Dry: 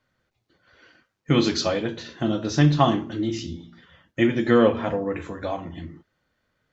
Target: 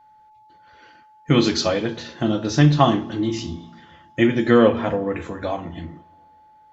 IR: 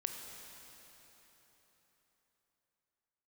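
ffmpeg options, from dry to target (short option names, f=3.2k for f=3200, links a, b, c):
-filter_complex "[0:a]aeval=exprs='val(0)+0.00224*sin(2*PI*860*n/s)':c=same,asplit=2[a][b];[1:a]atrim=start_sample=2205,asetrate=74970,aresample=44100[c];[b][c]afir=irnorm=-1:irlink=0,volume=-13dB[d];[a][d]amix=inputs=2:normalize=0,volume=2dB"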